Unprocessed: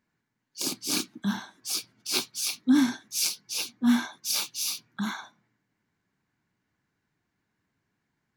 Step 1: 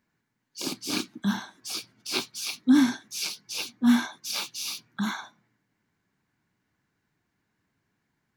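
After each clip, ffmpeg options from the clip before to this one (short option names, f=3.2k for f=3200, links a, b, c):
-filter_complex "[0:a]acrossover=split=4300[a][b];[b]acompressor=threshold=-37dB:ratio=4:attack=1:release=60[c];[a][c]amix=inputs=2:normalize=0,volume=2dB"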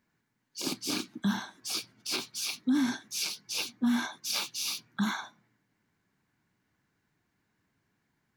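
-af "alimiter=limit=-20dB:level=0:latency=1:release=113"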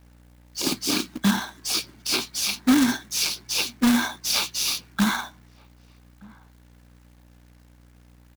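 -filter_complex "[0:a]aeval=exprs='val(0)+0.001*(sin(2*PI*60*n/s)+sin(2*PI*2*60*n/s)/2+sin(2*PI*3*60*n/s)/3+sin(2*PI*4*60*n/s)/4+sin(2*PI*5*60*n/s)/5)':c=same,acrusher=bits=2:mode=log:mix=0:aa=0.000001,asplit=2[a][b];[b]adelay=1224,volume=-25dB,highshelf=f=4k:g=-27.6[c];[a][c]amix=inputs=2:normalize=0,volume=8dB"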